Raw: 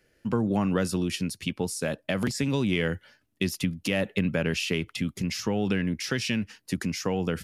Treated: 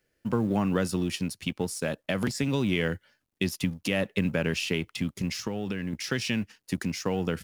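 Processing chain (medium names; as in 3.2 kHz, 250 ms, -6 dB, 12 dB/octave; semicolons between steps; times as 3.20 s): companding laws mixed up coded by A; 5.41–5.93 s: compression, threshold -28 dBFS, peak gain reduction 6.5 dB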